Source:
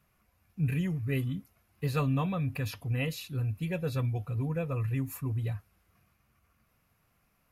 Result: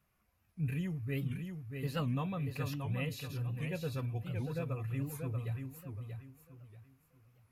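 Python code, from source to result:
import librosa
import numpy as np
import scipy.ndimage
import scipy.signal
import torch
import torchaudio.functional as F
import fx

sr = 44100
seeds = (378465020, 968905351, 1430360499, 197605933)

p1 = x + fx.echo_feedback(x, sr, ms=635, feedback_pct=29, wet_db=-6.0, dry=0)
p2 = fx.record_warp(p1, sr, rpm=78.0, depth_cents=160.0)
y = F.gain(torch.from_numpy(p2), -6.0).numpy()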